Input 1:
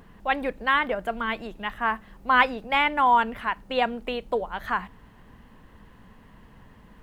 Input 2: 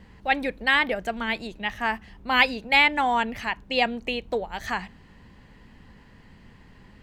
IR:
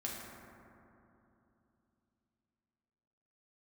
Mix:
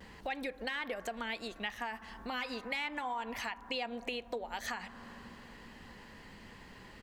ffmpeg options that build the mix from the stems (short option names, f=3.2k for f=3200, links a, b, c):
-filter_complex "[0:a]flanger=delay=5:depth=7.7:regen=61:speed=0.58:shape=sinusoidal,volume=-12dB,asplit=3[a][b][c];[b]volume=-5dB[d];[1:a]bass=f=250:g=-10,treble=f=4k:g=4,asoftclip=type=tanh:threshold=-5dB,adelay=3.9,volume=2.5dB[e];[c]apad=whole_len=309946[f];[e][f]sidechaincompress=threshold=-44dB:ratio=8:attack=20:release=107[g];[2:a]atrim=start_sample=2205[h];[d][h]afir=irnorm=-1:irlink=0[i];[a][g][i]amix=inputs=3:normalize=0,acompressor=threshold=-40dB:ratio=2.5"